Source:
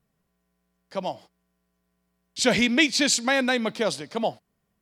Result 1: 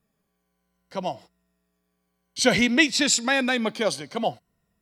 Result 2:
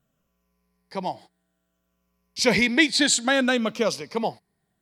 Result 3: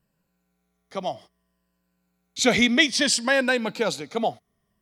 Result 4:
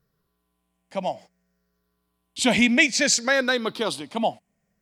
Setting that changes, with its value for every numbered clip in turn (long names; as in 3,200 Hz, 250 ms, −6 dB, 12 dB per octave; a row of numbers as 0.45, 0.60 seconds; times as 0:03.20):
rippled gain that drifts along the octave scale, ripples per octave: 2, 0.85, 1.3, 0.58